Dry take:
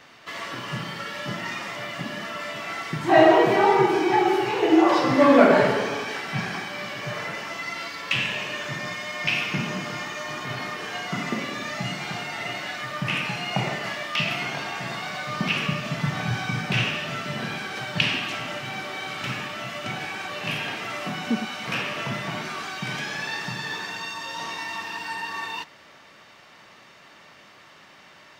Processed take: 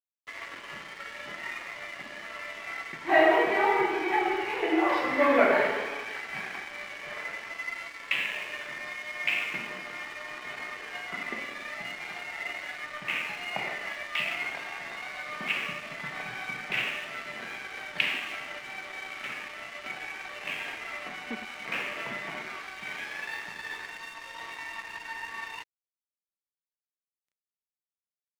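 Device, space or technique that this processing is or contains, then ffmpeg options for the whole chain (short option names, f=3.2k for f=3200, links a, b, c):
pocket radio on a weak battery: -filter_complex "[0:a]asettb=1/sr,asplit=3[a][b][c];[a]atrim=end=21.554[d];[b]atrim=start=21.55:end=22.57,asetpts=PTS-STARTPTS,afade=t=in:d=0.004:c=qsin,afade=t=out:st=1.016:d=0.004:c=qsin,lowshelf=f=420:g=6[e];[c]atrim=start=22.566[f];[d][e]acrossfade=d=0.004:c1=hsin:c2=qsin[g];[g][f]acrossfade=d=0.004:c1=qsin:c2=hsin,highpass=340,lowpass=3.5k,aeval=exprs='sgn(val(0))*max(abs(val(0))-0.0106,0)':c=same,equalizer=f=2.1k:t=o:w=0.49:g=8.5,volume=-5.5dB"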